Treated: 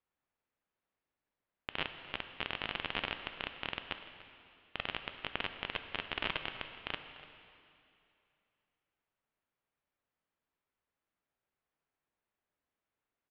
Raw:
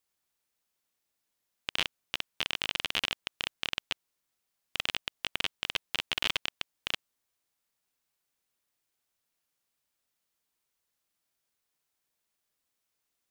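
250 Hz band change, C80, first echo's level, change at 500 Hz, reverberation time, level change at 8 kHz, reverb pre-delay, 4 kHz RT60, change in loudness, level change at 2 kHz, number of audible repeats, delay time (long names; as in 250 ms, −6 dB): +0.5 dB, 9.0 dB, −18.0 dB, +0.5 dB, 2.7 s, below −30 dB, 4 ms, 2.5 s, −6.5 dB, −4.5 dB, 1, 293 ms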